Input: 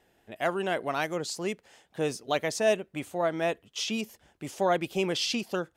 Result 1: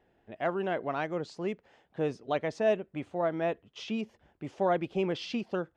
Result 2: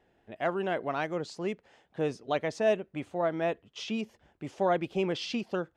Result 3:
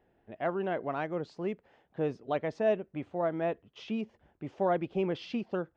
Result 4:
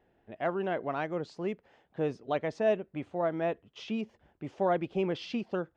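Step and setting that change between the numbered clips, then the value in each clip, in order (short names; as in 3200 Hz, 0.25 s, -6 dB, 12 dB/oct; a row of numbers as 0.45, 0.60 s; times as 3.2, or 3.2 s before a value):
tape spacing loss, at 10 kHz: 29, 20, 45, 37 dB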